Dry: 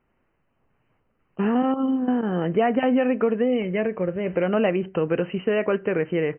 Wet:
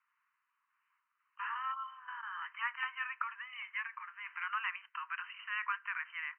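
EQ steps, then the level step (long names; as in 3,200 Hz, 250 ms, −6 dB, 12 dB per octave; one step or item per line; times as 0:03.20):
Butterworth high-pass 980 Hz 96 dB per octave
low-pass filter 2,200 Hz 12 dB per octave
−2.0 dB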